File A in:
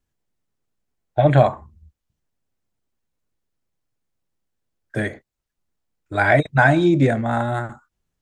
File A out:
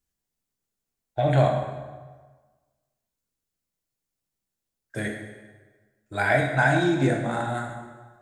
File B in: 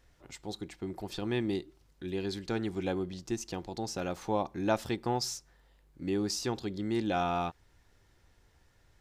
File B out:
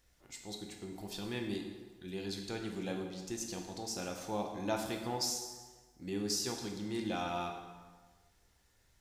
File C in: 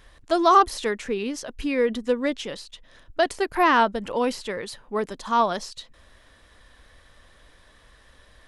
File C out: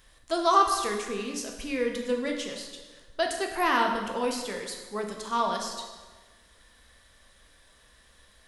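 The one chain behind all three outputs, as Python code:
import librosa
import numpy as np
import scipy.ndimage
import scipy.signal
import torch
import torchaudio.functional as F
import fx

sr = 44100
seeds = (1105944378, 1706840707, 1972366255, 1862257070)

y = fx.high_shelf(x, sr, hz=3900.0, db=11.5)
y = fx.rev_plate(y, sr, seeds[0], rt60_s=1.4, hf_ratio=0.75, predelay_ms=0, drr_db=1.5)
y = y * librosa.db_to_amplitude(-8.5)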